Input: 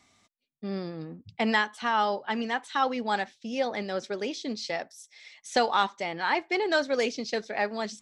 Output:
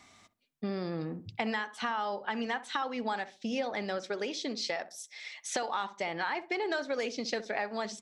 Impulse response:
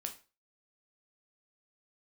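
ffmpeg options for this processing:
-filter_complex "[0:a]equalizer=frequency=1300:width=0.55:gain=3.5,asplit=2[link_01][link_02];[link_02]alimiter=limit=-17dB:level=0:latency=1,volume=0dB[link_03];[link_01][link_03]amix=inputs=2:normalize=0,acompressor=threshold=-28dB:ratio=6,asettb=1/sr,asplit=3[link_04][link_05][link_06];[link_04]atrim=end=3.984[link_07];[link_05]atrim=start=3.98:end=5.7,asetpts=PTS-STARTPTS,afade=type=in:duration=0.004:curve=qsin,afade=type=out:start_time=1.716:duration=0.004:curve=qsin,lowshelf=frequency=140:gain=-10.5[link_08];[link_06]atrim=start=5.696[link_09];[link_07][link_08]acrossfade=duration=0.004:curve1=hsin:curve2=qsin[link_10];[link_10][link_09]acrossfade=duration=0.004:curve1=qsin:curve2=hsin,asplit=2[link_11][link_12];[link_12]adelay=64,lowpass=frequency=820:poles=1,volume=-12.5dB,asplit=2[link_13][link_14];[link_14]adelay=64,lowpass=frequency=820:poles=1,volume=0.34,asplit=2[link_15][link_16];[link_16]adelay=64,lowpass=frequency=820:poles=1,volume=0.34[link_17];[link_11][link_13][link_15][link_17]amix=inputs=4:normalize=0,volume=-2.5dB"

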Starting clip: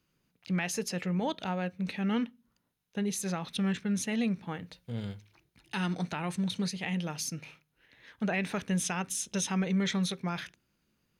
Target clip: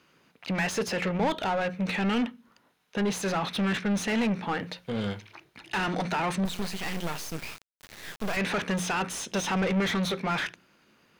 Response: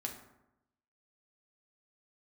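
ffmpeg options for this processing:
-filter_complex "[0:a]asplit=2[link_01][link_02];[link_02]highpass=frequency=720:poles=1,volume=27dB,asoftclip=type=tanh:threshold=-18dB[link_03];[link_01][link_03]amix=inputs=2:normalize=0,lowpass=frequency=1800:poles=1,volume=-6dB,bandreject=frequency=60:width_type=h:width=6,bandreject=frequency=120:width_type=h:width=6,bandreject=frequency=180:width_type=h:width=6,asettb=1/sr,asplit=3[link_04][link_05][link_06];[link_04]atrim=end=6.454[link_07];[link_05]atrim=start=6.45:end=8.37,asetpts=PTS-STARTPTS,afade=type=in:duration=0.004:curve=qsin,afade=type=out:start_time=1.916:duration=0.004:curve=qsin,acrusher=bits=4:dc=4:mix=0:aa=0.000001[link_08];[link_06]atrim=start=8.366[link_09];[link_07][link_08]acrossfade=duration=0.004:curve1=hsin:curve2=qsin[link_10];[link_10][link_09]acrossfade=duration=0.004:curve1=qsin:curve2=hsin"

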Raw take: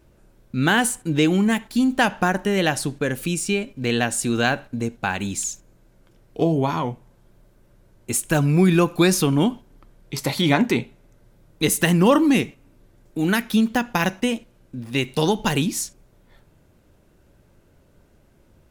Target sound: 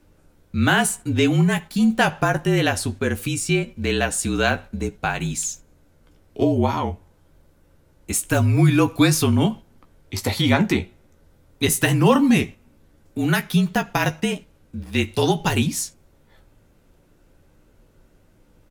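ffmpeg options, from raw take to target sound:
ffmpeg -i in.wav -filter_complex "[0:a]asplit=2[link_01][link_02];[link_02]adelay=15,volume=-8.5dB[link_03];[link_01][link_03]amix=inputs=2:normalize=0,afreqshift=-38" out.wav

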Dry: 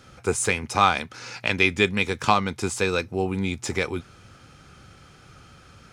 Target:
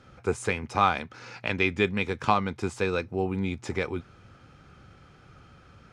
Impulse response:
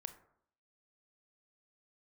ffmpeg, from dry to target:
-af "aemphasis=mode=reproduction:type=75kf,volume=-2.5dB"

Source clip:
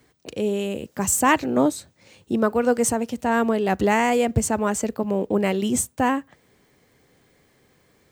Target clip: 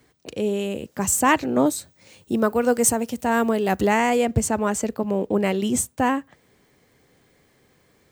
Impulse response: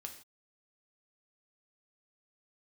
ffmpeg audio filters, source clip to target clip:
-filter_complex "[0:a]asettb=1/sr,asplit=3[link_01][link_02][link_03];[link_01]atrim=end=1.664[link_04];[link_02]atrim=start=1.66:end=3.87,asetpts=PTS-STARTPTS,afade=type=in:duration=0.004:curve=qsin,afade=type=out:start_time=2.206:duration=0.004:curve=qsin,highshelf=frequency=8500:gain=10.5[link_05];[link_03]atrim=start=3.866[link_06];[link_04][link_05]acrossfade=duration=0.004:curve1=hsin:curve2=qsin[link_07];[link_07][link_06]acrossfade=duration=0.004:curve1=qsin:curve2=hsin"

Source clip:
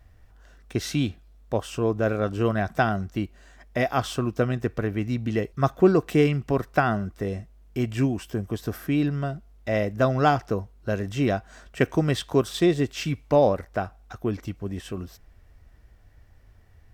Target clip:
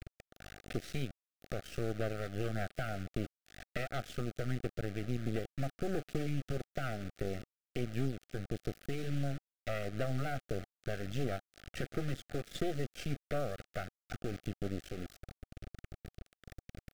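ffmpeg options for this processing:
ffmpeg -i in.wav -af "alimiter=limit=-13.5dB:level=0:latency=1:release=101,adynamicequalizer=threshold=0.00631:dfrequency=140:dqfactor=5.6:tfrequency=140:tqfactor=5.6:attack=5:release=100:ratio=0.375:range=4:mode=boostabove:tftype=bell,aphaser=in_gain=1:out_gain=1:delay=1.3:decay=0.36:speed=1.5:type=sinusoidal,acompressor=threshold=-39dB:ratio=3,aeval=exprs='0.0562*(cos(1*acos(clip(val(0)/0.0562,-1,1)))-cos(1*PI/2))+0.0224*(cos(4*acos(clip(val(0)/0.0562,-1,1)))-cos(4*PI/2))':channel_layout=same,bandreject=frequency=310.8:width_type=h:width=4,bandreject=frequency=621.6:width_type=h:width=4,acrusher=bits=6:mix=0:aa=0.000001,asuperstop=centerf=960:order=8:qfactor=2.1,highshelf=frequency=6600:gain=-10,volume=-2dB" out.wav

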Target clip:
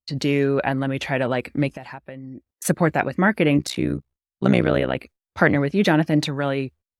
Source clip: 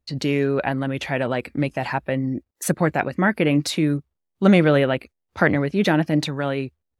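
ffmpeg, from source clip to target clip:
ffmpeg -i in.wav -filter_complex "[0:a]agate=range=-20dB:threshold=-46dB:ratio=16:detection=peak,asettb=1/sr,asplit=3[link_01][link_02][link_03];[link_01]atrim=end=1.764[link_04];[link_02]atrim=start=1.76:end=2.65,asetpts=PTS-STARTPTS,afade=type=in:duration=0.004:curve=qsin,afade=type=out:start_time=0.886:duration=0.004:curve=qsin,acompressor=threshold=-34dB:ratio=16[link_05];[link_03]atrim=start=2.646[link_06];[link_04][link_05]acrossfade=duration=0.004:curve1=hsin:curve2=qsin[link_07];[link_07][link_06]acrossfade=duration=0.004:curve1=qsin:curve2=hsin,asplit=3[link_08][link_09][link_10];[link_08]afade=type=out:start_time=3.57:duration=0.02[link_11];[link_09]tremolo=f=63:d=0.974,afade=type=in:start_time=3.57:duration=0.02,afade=type=out:start_time=4.95:duration=0.02[link_12];[link_10]afade=type=in:start_time=4.95:duration=0.02[link_13];[link_11][link_12][link_13]amix=inputs=3:normalize=0,volume=1dB" out.wav

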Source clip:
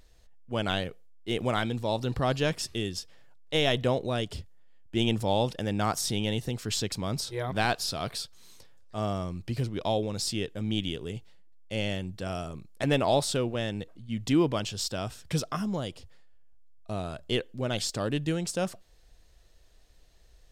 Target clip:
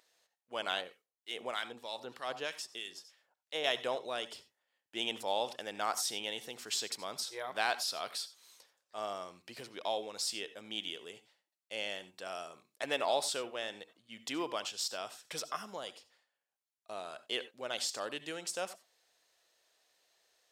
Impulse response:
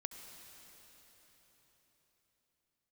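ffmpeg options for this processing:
-filter_complex "[1:a]atrim=start_sample=2205,atrim=end_sample=4410[link_01];[0:a][link_01]afir=irnorm=-1:irlink=0,asettb=1/sr,asplit=3[link_02][link_03][link_04];[link_02]atrim=end=0.814[link_05];[link_03]atrim=start=0.81:end=3.64,asetpts=PTS-STARTPTS,afade=type=in:duration=0.004:curve=qsin,afade=type=out:start_time=2.826:duration=0.004:curve=qsin,acrossover=split=1400[link_06][link_07];[link_06]aeval=exprs='val(0)*(1-0.7/2+0.7/2*cos(2*PI*3.2*n/s))':channel_layout=same[link_08];[link_07]aeval=exprs='val(0)*(1-0.7/2-0.7/2*cos(2*PI*3.2*n/s))':channel_layout=same[link_09];[link_08][link_09]amix=inputs=2:normalize=0[link_10];[link_04]atrim=start=3.636[link_11];[link_05][link_10]acrossfade=duration=0.004:curve1=hsin:curve2=qsin[link_12];[link_12][link_11]acrossfade=duration=0.004:curve1=qsin:curve2=hsin,highpass=620"

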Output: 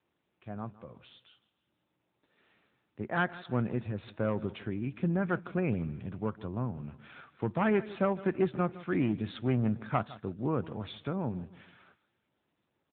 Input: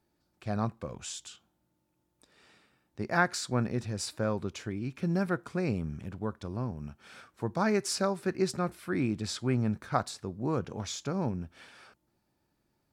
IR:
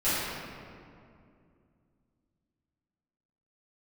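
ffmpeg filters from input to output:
-filter_complex "[0:a]asettb=1/sr,asplit=3[link_01][link_02][link_03];[link_01]atrim=end=4.944[link_04];[link_02]atrim=start=4.94:end=7.71,asetpts=PTS-STARTPTS,afade=type=in:duration=0.004:curve=qsin,afade=type=out:start_time=2.766:duration=0.004:curve=qsin,adynamicequalizer=threshold=0.00794:dfrequency=310:dqfactor=0.96:tfrequency=310:tqfactor=0.96:attack=5:release=100:ratio=0.375:range=2:mode=cutabove:tftype=bell[link_05];[link_03]atrim=start=7.706[link_06];[link_04][link_05]acrossfade=duration=0.004:curve1=hsin:curve2=qsin[link_07];[link_07][link_06]acrossfade=duration=0.004:curve1=qsin:curve2=hsin,dynaudnorm=framelen=850:gausssize=7:maxgain=12dB,aeval=exprs='clip(val(0),-1,0.188)':channel_layout=same,aecho=1:1:159|318|477:0.126|0.0478|0.0182,volume=-8dB" -ar 8000 -c:a libopencore_amrnb -b:a 10200

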